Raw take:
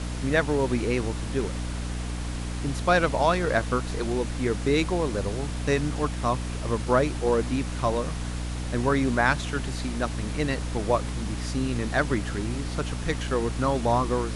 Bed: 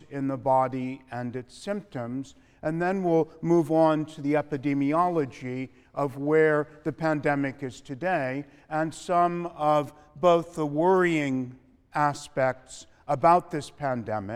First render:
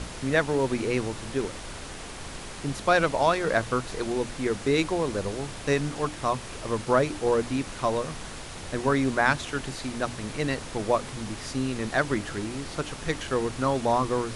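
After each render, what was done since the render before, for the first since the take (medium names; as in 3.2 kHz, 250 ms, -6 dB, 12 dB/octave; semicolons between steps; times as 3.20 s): hum notches 60/120/180/240/300 Hz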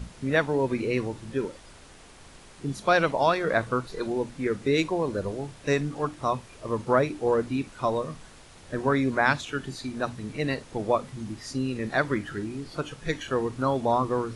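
noise print and reduce 11 dB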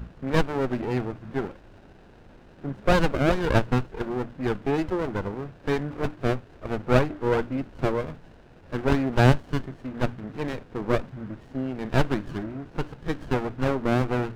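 resonant low-pass 1.5 kHz, resonance Q 3.4; sliding maximum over 33 samples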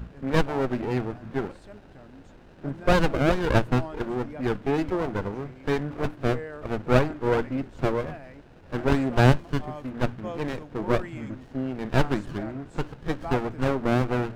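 add bed -16.5 dB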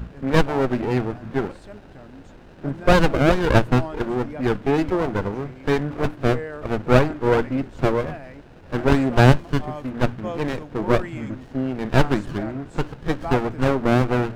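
trim +5 dB; peak limiter -3 dBFS, peak gain reduction 1.5 dB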